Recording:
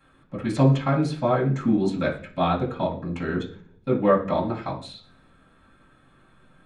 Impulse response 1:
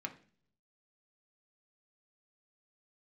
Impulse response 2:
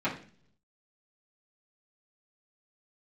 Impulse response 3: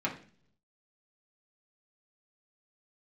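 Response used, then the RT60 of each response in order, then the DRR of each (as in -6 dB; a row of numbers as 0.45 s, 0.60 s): 2; 0.45 s, 0.45 s, 0.45 s; 3.5 dB, -11.0 dB, -4.0 dB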